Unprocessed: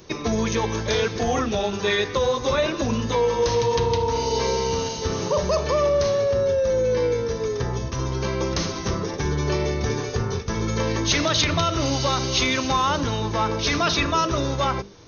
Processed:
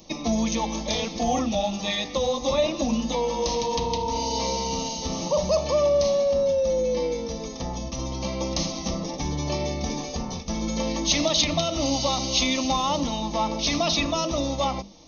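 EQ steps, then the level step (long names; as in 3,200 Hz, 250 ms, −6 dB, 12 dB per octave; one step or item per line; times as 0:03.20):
phaser with its sweep stopped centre 410 Hz, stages 6
notch filter 1,000 Hz, Q 13
+1.5 dB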